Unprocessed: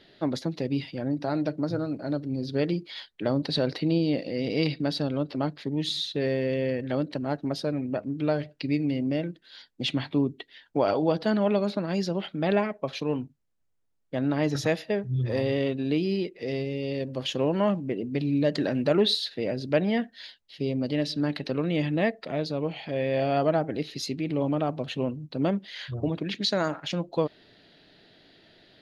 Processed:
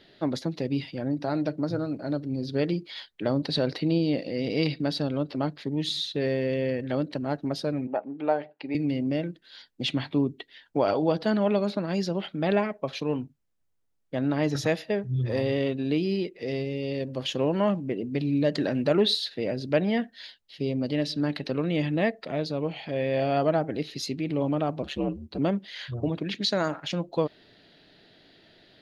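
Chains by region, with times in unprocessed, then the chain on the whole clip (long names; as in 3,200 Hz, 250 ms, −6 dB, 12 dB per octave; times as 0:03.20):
0:07.87–0:08.75: band-pass filter 340–2,300 Hz + parametric band 820 Hz +12.5 dB 0.36 octaves
0:24.82–0:25.39: comb filter 4.5 ms, depth 92% + ring modulation 71 Hz
whole clip: no processing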